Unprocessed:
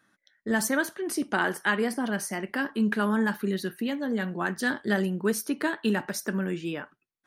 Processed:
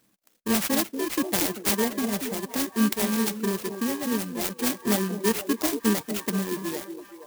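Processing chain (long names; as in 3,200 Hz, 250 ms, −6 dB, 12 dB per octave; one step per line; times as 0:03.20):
samples in bit-reversed order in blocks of 32 samples
reverb reduction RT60 1.7 s
on a send: echo through a band-pass that steps 235 ms, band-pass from 310 Hz, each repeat 0.7 octaves, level −5.5 dB
0:04.05–0:04.63: on the sum: transient designer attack −1 dB, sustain −6 dB
converter with an unsteady clock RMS 0.058 ms
level +3.5 dB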